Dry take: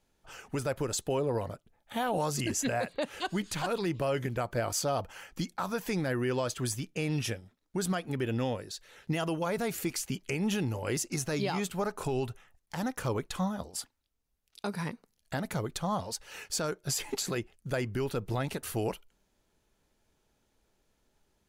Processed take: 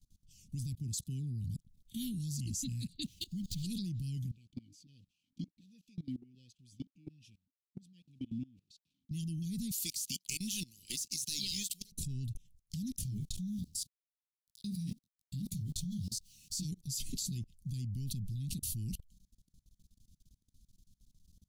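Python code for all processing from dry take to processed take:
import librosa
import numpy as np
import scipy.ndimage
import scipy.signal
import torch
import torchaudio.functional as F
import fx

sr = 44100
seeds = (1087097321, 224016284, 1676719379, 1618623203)

y = fx.chain(x, sr, fx.highpass(hz=77.0, slope=12),
    fx.band_widen(depth_pct=40), at=(0.75, 1.44))
y = fx.chain(y, sr, fx.median_filter(points=5),
    fx.dynamic_eq(hz=990.0, q=0.75, threshold_db=-48.0, ratio=4.0, max_db=-8), at=(3.04, 3.63))
y = fx.chain(y, sr, fx.delta_hold(step_db=-49.0),
    fx.vowel_held(hz=5.4), at=(4.31, 9.11))
y = fx.chain(y, sr, fx.highpass(hz=840.0, slope=12),
    fx.leveller(passes=2), at=(9.71, 11.92))
y = fx.chain(y, sr, fx.sample_gate(floor_db=-51.0),
    fx.detune_double(cents=46), at=(12.97, 16.65))
y = scipy.signal.sosfilt(scipy.signal.cheby2(4, 70, [580.0, 1400.0], 'bandstop', fs=sr, output='sos'), y)
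y = fx.low_shelf(y, sr, hz=340.0, db=7.0)
y = fx.level_steps(y, sr, step_db=23)
y = y * 10.0 ** (8.5 / 20.0)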